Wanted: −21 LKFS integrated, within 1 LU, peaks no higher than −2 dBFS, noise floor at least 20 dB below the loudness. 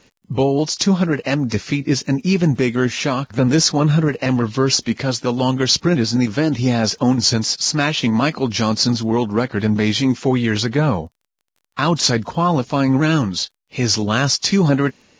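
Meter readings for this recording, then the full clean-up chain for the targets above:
crackle rate 22 per second; integrated loudness −18.0 LKFS; sample peak −2.5 dBFS; target loudness −21.0 LKFS
→ click removal
level −3 dB

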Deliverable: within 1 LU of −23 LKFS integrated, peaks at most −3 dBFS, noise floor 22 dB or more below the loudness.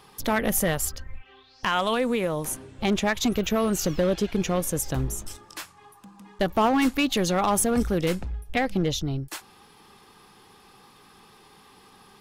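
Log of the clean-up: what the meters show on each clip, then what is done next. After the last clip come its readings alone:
share of clipped samples 0.9%; peaks flattened at −15.5 dBFS; integrated loudness −25.5 LKFS; sample peak −15.5 dBFS; target loudness −23.0 LKFS
→ clipped peaks rebuilt −15.5 dBFS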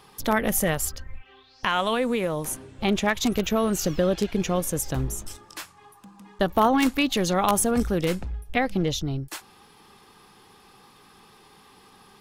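share of clipped samples 0.0%; integrated loudness −25.0 LKFS; sample peak −6.5 dBFS; target loudness −23.0 LKFS
→ level +2 dB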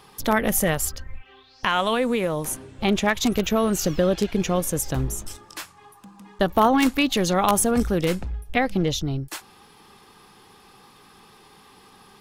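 integrated loudness −23.0 LKFS; sample peak −4.5 dBFS; background noise floor −52 dBFS

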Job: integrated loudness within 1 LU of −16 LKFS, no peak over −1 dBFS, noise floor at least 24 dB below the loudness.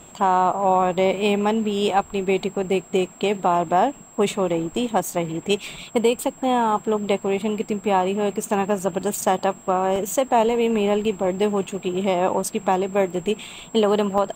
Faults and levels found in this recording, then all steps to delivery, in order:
number of dropouts 3; longest dropout 1.7 ms; interfering tone 7,600 Hz; level of the tone −46 dBFS; integrated loudness −22.0 LKFS; sample peak −8.5 dBFS; target loudness −16.0 LKFS
→ repair the gap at 0:09.02/0:09.96/0:14.18, 1.7 ms
notch filter 7,600 Hz, Q 30
level +6 dB

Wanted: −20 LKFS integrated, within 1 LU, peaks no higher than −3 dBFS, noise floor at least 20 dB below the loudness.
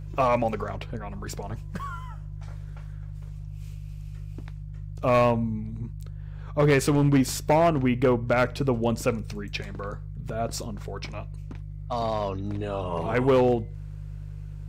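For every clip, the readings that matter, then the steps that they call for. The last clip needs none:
share of clipped samples 0.7%; peaks flattened at −14.5 dBFS; mains hum 50 Hz; hum harmonics up to 150 Hz; level of the hum −35 dBFS; integrated loudness −26.0 LKFS; sample peak −14.5 dBFS; target loudness −20.0 LKFS
→ clipped peaks rebuilt −14.5 dBFS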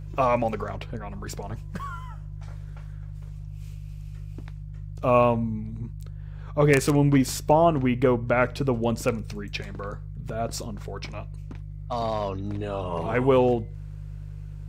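share of clipped samples 0.0%; mains hum 50 Hz; hum harmonics up to 150 Hz; level of the hum −34 dBFS
→ hum removal 50 Hz, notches 3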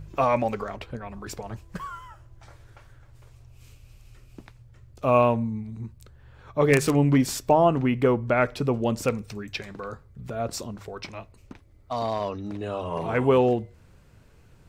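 mains hum none found; integrated loudness −24.5 LKFS; sample peak −5.0 dBFS; target loudness −20.0 LKFS
→ level +4.5 dB
brickwall limiter −3 dBFS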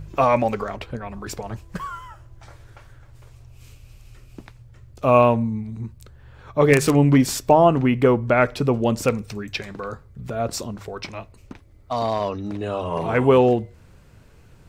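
integrated loudness −20.0 LKFS; sample peak −3.0 dBFS; background noise floor −50 dBFS

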